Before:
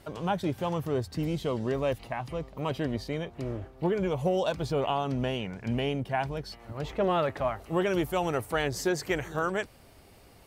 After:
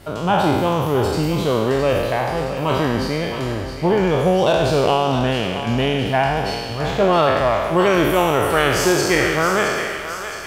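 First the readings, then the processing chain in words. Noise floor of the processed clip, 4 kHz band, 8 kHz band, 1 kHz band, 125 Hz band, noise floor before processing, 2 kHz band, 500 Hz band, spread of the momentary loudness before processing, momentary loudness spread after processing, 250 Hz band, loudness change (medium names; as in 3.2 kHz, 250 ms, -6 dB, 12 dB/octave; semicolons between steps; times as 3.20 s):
-28 dBFS, +14.5 dB, +15.0 dB, +13.5 dB, +10.5 dB, -55 dBFS, +14.5 dB, +12.0 dB, 8 LU, 7 LU, +11.0 dB, +12.0 dB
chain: spectral sustain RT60 1.59 s; thinning echo 667 ms, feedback 57%, high-pass 720 Hz, level -8.5 dB; trim +8.5 dB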